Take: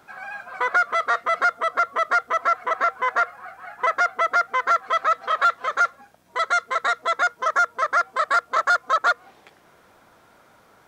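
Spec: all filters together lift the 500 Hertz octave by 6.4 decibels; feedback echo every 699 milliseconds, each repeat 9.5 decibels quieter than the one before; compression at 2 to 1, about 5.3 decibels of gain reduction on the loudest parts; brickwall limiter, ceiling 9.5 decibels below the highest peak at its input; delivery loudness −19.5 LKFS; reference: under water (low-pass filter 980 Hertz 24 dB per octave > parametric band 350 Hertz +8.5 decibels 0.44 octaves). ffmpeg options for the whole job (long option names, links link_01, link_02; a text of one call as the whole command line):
ffmpeg -i in.wav -af "equalizer=frequency=500:width_type=o:gain=8,acompressor=threshold=-23dB:ratio=2,alimiter=limit=-19.5dB:level=0:latency=1,lowpass=frequency=980:width=0.5412,lowpass=frequency=980:width=1.3066,equalizer=frequency=350:width_type=o:width=0.44:gain=8.5,aecho=1:1:699|1398|2097|2796:0.335|0.111|0.0365|0.012,volume=15dB" out.wav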